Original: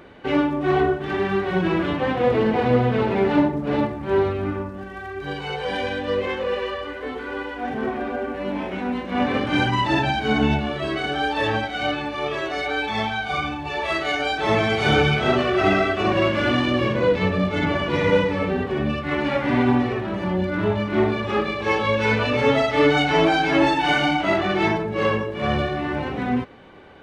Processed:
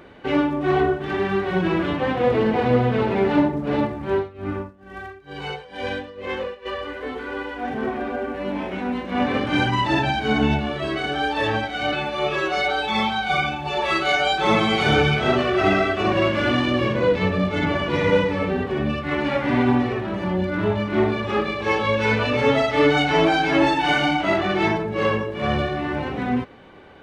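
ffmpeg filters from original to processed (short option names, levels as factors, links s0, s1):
-filter_complex "[0:a]asplit=3[s0][s1][s2];[s0]afade=t=out:st=4.09:d=0.02[s3];[s1]tremolo=f=2.2:d=0.9,afade=t=in:st=4.09:d=0.02,afade=t=out:st=6.65:d=0.02[s4];[s2]afade=t=in:st=6.65:d=0.02[s5];[s3][s4][s5]amix=inputs=3:normalize=0,asettb=1/sr,asplit=3[s6][s7][s8];[s6]atrim=end=11.924[s9];[s7]atrim=start=11.92:end=14.83,asetpts=PTS-STARTPTS,afade=t=in:d=0.004:c=qsin,afade=t=out:st=2.906:d=0.004:c=qsin,aecho=1:1:5.4:0.97,atrim=end_sample=128331[s10];[s8]atrim=start=14.826[s11];[s9][s10]acrossfade=d=0.004:c1=hsin:c2=qsin[s12];[s12][s11]acrossfade=d=0.004:c1=qsin:c2=hsin"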